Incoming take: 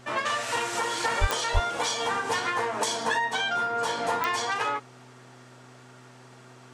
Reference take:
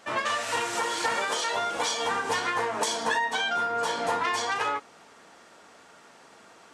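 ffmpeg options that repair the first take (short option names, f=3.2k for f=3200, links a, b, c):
-filter_complex "[0:a]adeclick=t=4,bandreject=f=125.5:t=h:w=4,bandreject=f=251:t=h:w=4,bandreject=f=376.5:t=h:w=4,asplit=3[a][b][c];[a]afade=t=out:st=1.2:d=0.02[d];[b]highpass=f=140:w=0.5412,highpass=f=140:w=1.3066,afade=t=in:st=1.2:d=0.02,afade=t=out:st=1.32:d=0.02[e];[c]afade=t=in:st=1.32:d=0.02[f];[d][e][f]amix=inputs=3:normalize=0,asplit=3[g][h][i];[g]afade=t=out:st=1.53:d=0.02[j];[h]highpass=f=140:w=0.5412,highpass=f=140:w=1.3066,afade=t=in:st=1.53:d=0.02,afade=t=out:st=1.65:d=0.02[k];[i]afade=t=in:st=1.65:d=0.02[l];[j][k][l]amix=inputs=3:normalize=0"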